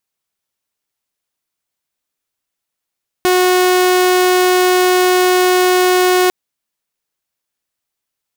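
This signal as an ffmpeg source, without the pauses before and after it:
ffmpeg -f lavfi -i "aevalsrc='0.447*(2*mod(365*t,1)-1)':duration=3.05:sample_rate=44100" out.wav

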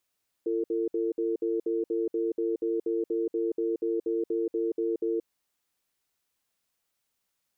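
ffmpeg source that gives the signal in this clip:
ffmpeg -f lavfi -i "aevalsrc='0.0398*(sin(2*PI*340*t)+sin(2*PI*451*t))*clip(min(mod(t,0.24),0.18-mod(t,0.24))/0.005,0,1)':duration=4.74:sample_rate=44100" out.wav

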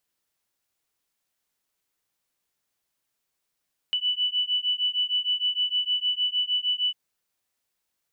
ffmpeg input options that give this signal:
ffmpeg -f lavfi -i "aevalsrc='0.0501*(sin(2*PI*2970*t)+sin(2*PI*2976.5*t))':duration=3:sample_rate=44100" out.wav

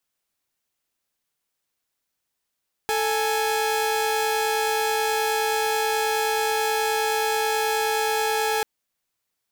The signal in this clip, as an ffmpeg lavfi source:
ffmpeg -f lavfi -i "aevalsrc='0.0841*((2*mod(440*t,1)-1)+(2*mod(830.61*t,1)-1))':duration=5.74:sample_rate=44100" out.wav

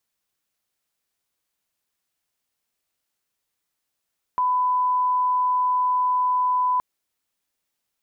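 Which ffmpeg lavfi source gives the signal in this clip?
ffmpeg -f lavfi -i "sine=frequency=1000:duration=2.42:sample_rate=44100,volume=0.06dB" out.wav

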